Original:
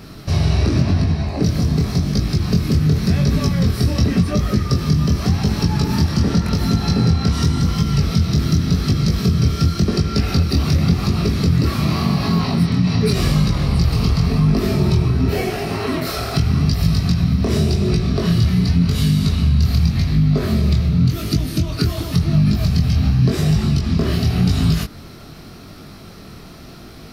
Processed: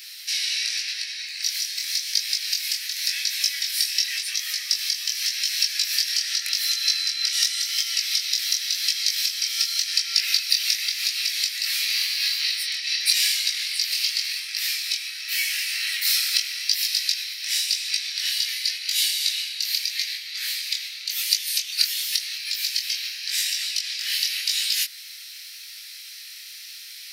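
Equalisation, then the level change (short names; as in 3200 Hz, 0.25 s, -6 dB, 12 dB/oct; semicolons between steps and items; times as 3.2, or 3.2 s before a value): steep high-pass 1800 Hz 48 dB/oct; high shelf 2500 Hz +10.5 dB; 0.0 dB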